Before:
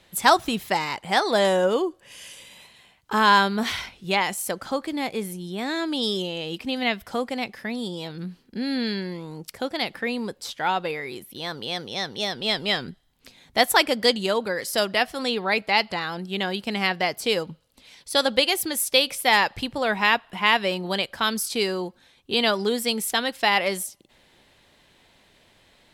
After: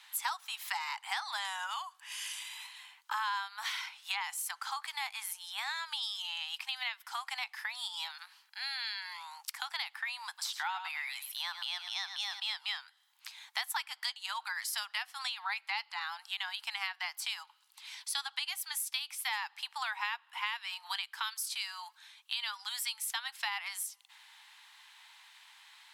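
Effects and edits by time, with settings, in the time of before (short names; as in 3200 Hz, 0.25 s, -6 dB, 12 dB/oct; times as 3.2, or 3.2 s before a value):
10.27–12.4 echo 0.105 s -11 dB
20.38–23.05 HPF 1000 Hz 6 dB/oct
whole clip: steep high-pass 830 Hz 72 dB/oct; compressor 6:1, threshold -37 dBFS; gain +2.5 dB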